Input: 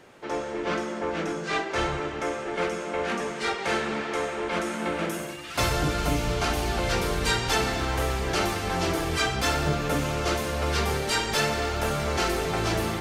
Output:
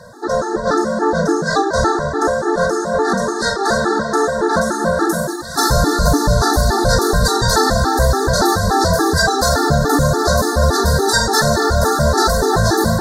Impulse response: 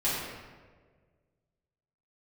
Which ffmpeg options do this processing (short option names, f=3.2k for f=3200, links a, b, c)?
-af "apsyclip=21.5dB,asuperstop=centerf=2600:order=12:qfactor=1.3,afftfilt=real='re*gt(sin(2*PI*3.5*pts/sr)*(1-2*mod(floor(b*sr/1024/230),2)),0)':imag='im*gt(sin(2*PI*3.5*pts/sr)*(1-2*mod(floor(b*sr/1024/230),2)),0)':win_size=1024:overlap=0.75,volume=-4.5dB"